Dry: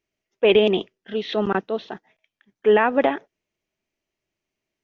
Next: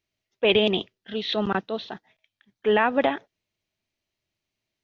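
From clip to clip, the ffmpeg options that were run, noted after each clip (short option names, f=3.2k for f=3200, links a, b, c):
-af "equalizer=f=100:t=o:w=0.67:g=8,equalizer=f=400:t=o:w=0.67:g=-4,equalizer=f=4k:t=o:w=0.67:g=8,volume=-2dB"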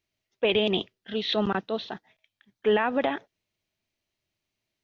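-af "alimiter=limit=-14dB:level=0:latency=1:release=70"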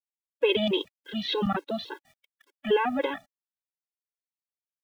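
-af "acrusher=bits=9:mix=0:aa=0.000001,afftfilt=real='re*gt(sin(2*PI*3.5*pts/sr)*(1-2*mod(floor(b*sr/1024/280),2)),0)':imag='im*gt(sin(2*PI*3.5*pts/sr)*(1-2*mod(floor(b*sr/1024/280),2)),0)':win_size=1024:overlap=0.75,volume=2dB"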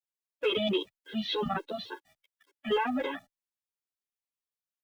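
-filter_complex "[0:a]acrossover=split=230|1100[a][b][c];[b]volume=23.5dB,asoftclip=hard,volume=-23.5dB[d];[a][d][c]amix=inputs=3:normalize=0,asplit=2[e][f];[f]adelay=10.1,afreqshift=0.77[g];[e][g]amix=inputs=2:normalize=1"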